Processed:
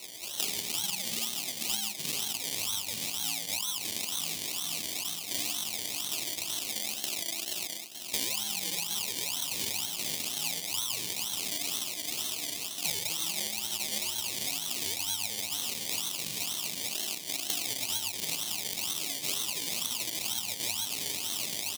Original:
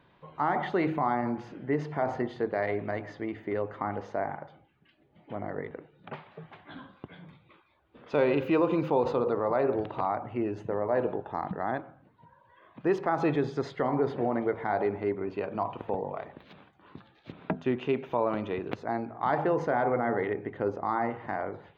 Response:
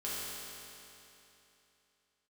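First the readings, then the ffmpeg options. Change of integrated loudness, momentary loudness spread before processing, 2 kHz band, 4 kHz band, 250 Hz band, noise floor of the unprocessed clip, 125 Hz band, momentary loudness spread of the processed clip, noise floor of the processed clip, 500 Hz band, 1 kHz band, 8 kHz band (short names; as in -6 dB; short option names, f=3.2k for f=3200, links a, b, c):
-1.0 dB, 17 LU, -1.5 dB, +22.5 dB, -15.5 dB, -64 dBFS, -13.0 dB, 2 LU, -40 dBFS, -20.0 dB, -15.5 dB, n/a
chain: -filter_complex "[0:a]lowshelf=f=270:g=5,bandreject=f=700:w=17,asplit=2[a][b];[b]adelay=438,lowpass=f=1.1k:p=1,volume=-11.5dB,asplit=2[c][d];[d]adelay=438,lowpass=f=1.1k:p=1,volume=0.46,asplit=2[e][f];[f]adelay=438,lowpass=f=1.1k:p=1,volume=0.46,asplit=2[g][h];[h]adelay=438,lowpass=f=1.1k:p=1,volume=0.46,asplit=2[i][j];[j]adelay=438,lowpass=f=1.1k:p=1,volume=0.46[k];[a][c][e][g][i][k]amix=inputs=6:normalize=0[l];[1:a]atrim=start_sample=2205,atrim=end_sample=3969,asetrate=22050,aresample=44100[m];[l][m]afir=irnorm=-1:irlink=0,aeval=exprs='val(0)*sin(2*PI*500*n/s)':c=same,areverse,acompressor=mode=upward:threshold=-29dB:ratio=2.5,areverse,acrusher=samples=26:mix=1:aa=0.000001:lfo=1:lforange=15.6:lforate=2.1,aexciter=amount=13.2:drive=4.5:freq=2.3k,highpass=130,acompressor=threshold=-23dB:ratio=16,volume=-5dB"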